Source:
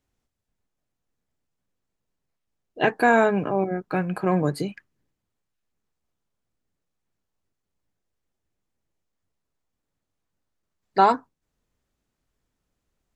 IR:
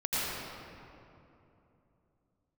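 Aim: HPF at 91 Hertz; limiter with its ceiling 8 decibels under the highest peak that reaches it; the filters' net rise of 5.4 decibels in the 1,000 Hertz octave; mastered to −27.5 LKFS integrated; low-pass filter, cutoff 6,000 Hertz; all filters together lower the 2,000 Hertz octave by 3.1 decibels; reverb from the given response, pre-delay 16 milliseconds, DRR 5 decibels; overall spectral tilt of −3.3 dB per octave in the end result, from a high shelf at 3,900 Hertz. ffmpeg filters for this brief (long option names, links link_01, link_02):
-filter_complex "[0:a]highpass=91,lowpass=6000,equalizer=frequency=1000:width_type=o:gain=9,equalizer=frequency=2000:width_type=o:gain=-7,highshelf=frequency=3900:gain=-7,alimiter=limit=-9.5dB:level=0:latency=1,asplit=2[link_01][link_02];[1:a]atrim=start_sample=2205,adelay=16[link_03];[link_02][link_03]afir=irnorm=-1:irlink=0,volume=-14.5dB[link_04];[link_01][link_04]amix=inputs=2:normalize=0,volume=-5dB"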